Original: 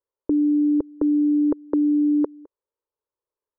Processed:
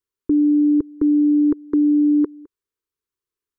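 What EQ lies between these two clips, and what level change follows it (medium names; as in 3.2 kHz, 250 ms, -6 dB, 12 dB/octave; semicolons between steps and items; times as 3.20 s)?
Butterworth band-stop 670 Hz, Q 0.77; +4.5 dB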